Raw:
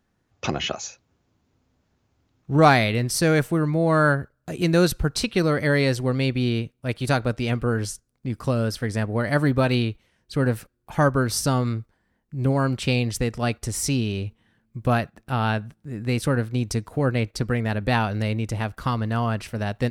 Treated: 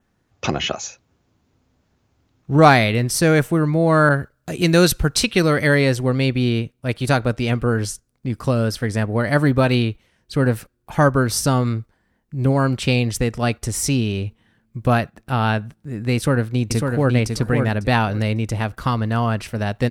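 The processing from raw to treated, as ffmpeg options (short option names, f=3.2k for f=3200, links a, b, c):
-filter_complex "[0:a]asettb=1/sr,asplit=3[a][b][c];[a]atrim=end=4.094[d];[b]atrim=start=4.09:end=5.75,asetpts=PTS-STARTPTS,afade=t=in:d=0.004:c=qsin,afade=t=out:st=1.656:d=0.004:c=qsin,adynamicequalizer=threshold=0.0141:dfrequency=1700:dqfactor=0.7:tfrequency=1700:tqfactor=0.7:attack=5:release=100:ratio=0.375:range=2.5:mode=boostabove:tftype=highshelf[e];[c]atrim=start=5.746[f];[d][e]acrossfade=d=0.004:c1=hsin:c2=qsin[g];[g][f]acrossfade=d=0.004:c1=qsin:c2=hsin,asplit=2[h][i];[i]afade=t=in:st=16.15:d=0.01,afade=t=out:st=17.13:d=0.01,aecho=0:1:550|1100|1650:0.595662|0.0893493|0.0134024[j];[h][j]amix=inputs=2:normalize=0,adynamicequalizer=threshold=0.00447:dfrequency=4500:dqfactor=3.4:tfrequency=4500:tqfactor=3.4:attack=5:release=100:ratio=0.375:range=2:mode=cutabove:tftype=bell,volume=4dB"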